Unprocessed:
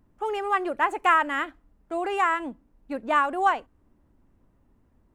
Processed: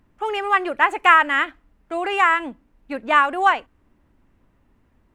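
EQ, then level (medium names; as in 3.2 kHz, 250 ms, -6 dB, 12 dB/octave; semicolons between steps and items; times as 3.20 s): peaking EQ 2.4 kHz +8.5 dB 1.9 oct; +2.0 dB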